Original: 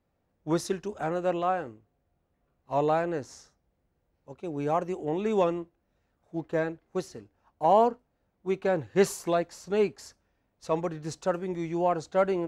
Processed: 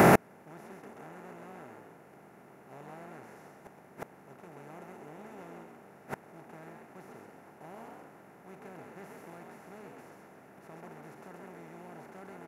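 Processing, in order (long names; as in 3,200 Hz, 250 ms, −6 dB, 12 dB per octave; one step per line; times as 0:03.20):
compressor on every frequency bin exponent 0.2
graphic EQ with 10 bands 125 Hz +6 dB, 500 Hz −8 dB, 1,000 Hz −5 dB, 2,000 Hz +5 dB, 4,000 Hz −9 dB, 8,000 Hz −11 dB
echo with shifted repeats 132 ms, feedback 37%, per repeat +62 Hz, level −3.5 dB
gate with flip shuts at −19 dBFS, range −39 dB
high-shelf EQ 8,100 Hz +9.5 dB
level +11 dB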